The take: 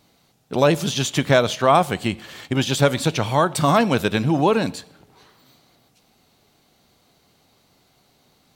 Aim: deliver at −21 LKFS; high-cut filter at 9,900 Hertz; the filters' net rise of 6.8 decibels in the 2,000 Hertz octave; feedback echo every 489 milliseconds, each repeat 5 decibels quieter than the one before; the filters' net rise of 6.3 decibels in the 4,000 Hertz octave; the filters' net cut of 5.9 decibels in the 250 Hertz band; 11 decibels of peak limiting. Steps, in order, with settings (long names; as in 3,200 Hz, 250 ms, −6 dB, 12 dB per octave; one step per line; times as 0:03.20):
low-pass filter 9,900 Hz
parametric band 250 Hz −8.5 dB
parametric band 2,000 Hz +8 dB
parametric band 4,000 Hz +5 dB
brickwall limiter −9.5 dBFS
repeating echo 489 ms, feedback 56%, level −5 dB